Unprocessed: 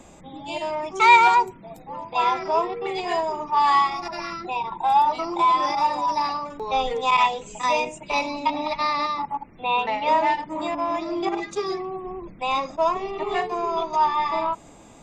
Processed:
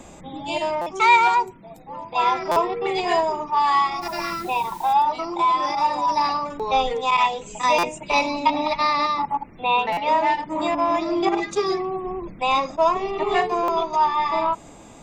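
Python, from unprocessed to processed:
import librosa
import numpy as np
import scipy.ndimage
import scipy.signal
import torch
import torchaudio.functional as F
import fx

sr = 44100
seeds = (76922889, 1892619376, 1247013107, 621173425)

y = fx.rider(x, sr, range_db=3, speed_s=0.5)
y = fx.quant_dither(y, sr, seeds[0], bits=8, dither='triangular', at=(4.01, 4.92), fade=0.02)
y = fx.buffer_glitch(y, sr, at_s=(0.81, 2.51, 7.78, 9.92, 13.63), block=256, repeats=8)
y = y * librosa.db_to_amplitude(1.5)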